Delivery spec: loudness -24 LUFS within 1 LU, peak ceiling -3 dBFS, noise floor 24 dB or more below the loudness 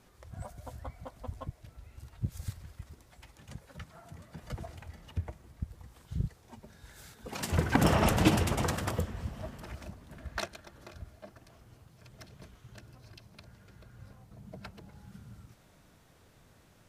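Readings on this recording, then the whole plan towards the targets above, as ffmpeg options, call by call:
loudness -33.5 LUFS; peak level -9.0 dBFS; loudness target -24.0 LUFS
-> -af "volume=2.99,alimiter=limit=0.708:level=0:latency=1"

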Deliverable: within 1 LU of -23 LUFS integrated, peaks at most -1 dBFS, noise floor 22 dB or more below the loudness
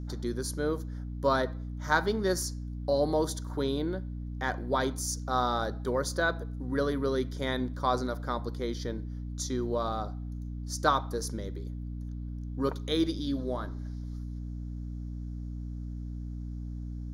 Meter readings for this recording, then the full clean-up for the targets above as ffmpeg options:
hum 60 Hz; highest harmonic 300 Hz; hum level -35 dBFS; loudness -32.5 LUFS; peak level -9.0 dBFS; loudness target -23.0 LUFS
-> -af "bandreject=f=60:t=h:w=6,bandreject=f=120:t=h:w=6,bandreject=f=180:t=h:w=6,bandreject=f=240:t=h:w=6,bandreject=f=300:t=h:w=6"
-af "volume=2.99,alimiter=limit=0.891:level=0:latency=1"

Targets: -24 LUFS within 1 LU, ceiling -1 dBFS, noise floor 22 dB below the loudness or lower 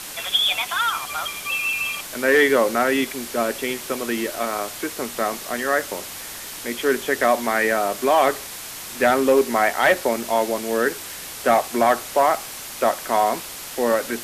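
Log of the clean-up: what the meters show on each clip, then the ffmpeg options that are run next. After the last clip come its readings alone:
noise floor -35 dBFS; noise floor target -43 dBFS; loudness -21.0 LUFS; peak level -7.0 dBFS; loudness target -24.0 LUFS
-> -af "afftdn=nr=8:nf=-35"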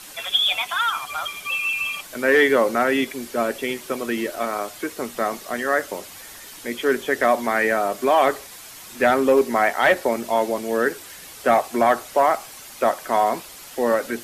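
noise floor -41 dBFS; noise floor target -44 dBFS
-> -af "afftdn=nr=6:nf=-41"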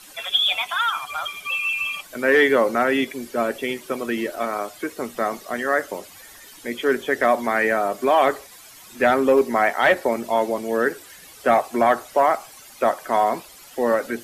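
noise floor -45 dBFS; loudness -21.5 LUFS; peak level -7.5 dBFS; loudness target -24.0 LUFS
-> -af "volume=0.75"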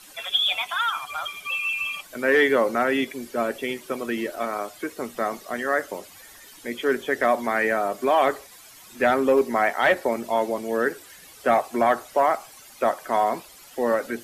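loudness -24.0 LUFS; peak level -10.0 dBFS; noise floor -48 dBFS

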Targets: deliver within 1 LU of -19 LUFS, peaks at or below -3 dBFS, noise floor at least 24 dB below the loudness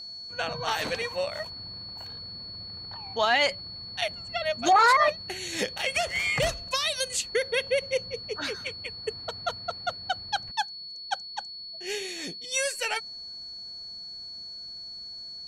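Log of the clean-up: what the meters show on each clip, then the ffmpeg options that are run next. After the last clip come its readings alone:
steady tone 4.4 kHz; tone level -38 dBFS; loudness -29.0 LUFS; peak level -11.5 dBFS; loudness target -19.0 LUFS
-> -af "bandreject=f=4400:w=30"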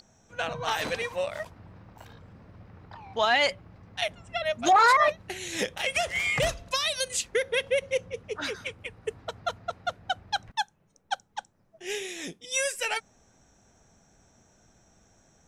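steady tone not found; loudness -28.0 LUFS; peak level -11.0 dBFS; loudness target -19.0 LUFS
-> -af "volume=2.82,alimiter=limit=0.708:level=0:latency=1"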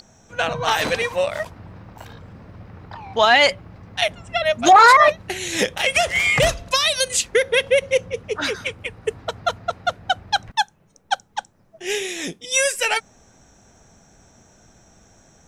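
loudness -19.0 LUFS; peak level -3.0 dBFS; noise floor -57 dBFS

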